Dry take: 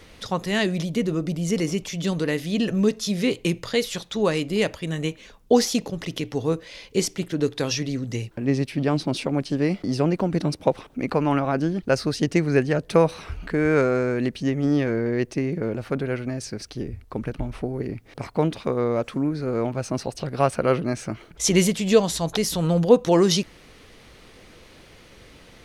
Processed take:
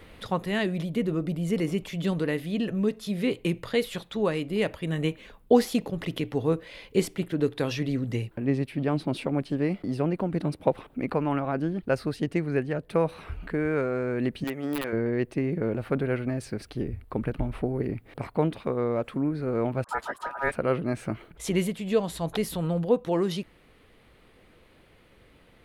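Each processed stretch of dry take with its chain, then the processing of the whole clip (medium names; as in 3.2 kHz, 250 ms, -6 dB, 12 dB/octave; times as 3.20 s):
14.44–14.93 s: high-pass 720 Hz 6 dB/octave + integer overflow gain 19.5 dB
19.84–20.52 s: peaking EQ 2 kHz -14 dB 0.65 oct + phase dispersion highs, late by 47 ms, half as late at 500 Hz + ring modulator 1.1 kHz
whole clip: peaking EQ 5.9 kHz -14.5 dB 0.87 oct; gain riding within 4 dB 0.5 s; trim -4 dB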